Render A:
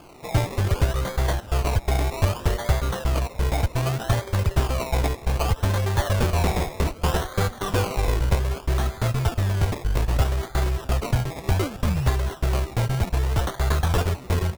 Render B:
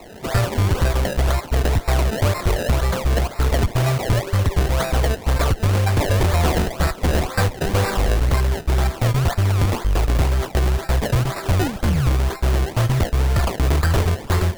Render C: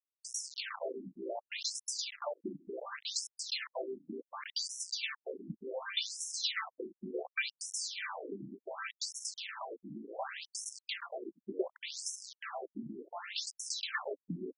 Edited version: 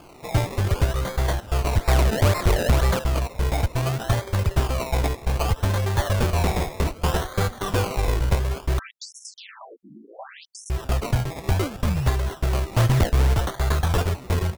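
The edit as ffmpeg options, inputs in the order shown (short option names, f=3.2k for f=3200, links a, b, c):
-filter_complex "[1:a]asplit=2[a][b];[0:a]asplit=4[c][d][e][f];[c]atrim=end=1.772[g];[a]atrim=start=1.768:end=2.992[h];[d]atrim=start=2.988:end=8.792[i];[2:a]atrim=start=8.788:end=10.702[j];[e]atrim=start=10.698:end=12.732[k];[b]atrim=start=12.728:end=13.342[l];[f]atrim=start=13.338[m];[g][h]acrossfade=d=0.004:c1=hsin:c2=hsin[n];[n][i]acrossfade=d=0.004:c1=hsin:c2=hsin[o];[o][j]acrossfade=d=0.004:c1=hsin:c2=hsin[p];[p][k]acrossfade=d=0.004:c1=hsin:c2=hsin[q];[q][l]acrossfade=d=0.004:c1=hsin:c2=hsin[r];[r][m]acrossfade=d=0.004:c1=hsin:c2=hsin"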